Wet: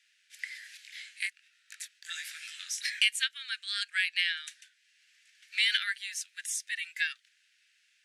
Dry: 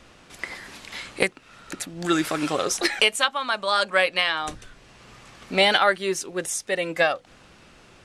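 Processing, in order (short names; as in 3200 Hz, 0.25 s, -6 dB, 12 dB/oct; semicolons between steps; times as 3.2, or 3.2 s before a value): steep high-pass 1600 Hz 72 dB/oct; gate -49 dBFS, range -7 dB; 0.77–3.01 chorus 1.2 Hz, delay 17.5 ms, depth 7.7 ms; gain -5.5 dB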